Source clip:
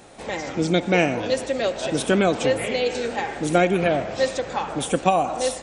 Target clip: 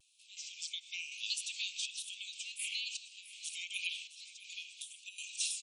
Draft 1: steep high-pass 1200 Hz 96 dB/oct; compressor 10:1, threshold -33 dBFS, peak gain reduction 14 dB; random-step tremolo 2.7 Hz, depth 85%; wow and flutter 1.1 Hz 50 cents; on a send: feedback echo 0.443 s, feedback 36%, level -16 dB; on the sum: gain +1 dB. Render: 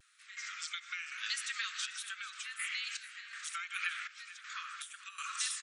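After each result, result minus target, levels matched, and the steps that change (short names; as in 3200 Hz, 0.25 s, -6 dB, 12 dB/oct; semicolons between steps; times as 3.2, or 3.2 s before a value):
echo 0.219 s early; 2000 Hz band +4.5 dB
change: feedback echo 0.662 s, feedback 36%, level -16 dB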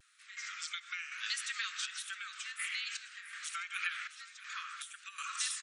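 2000 Hz band +4.5 dB
change: steep high-pass 2500 Hz 96 dB/oct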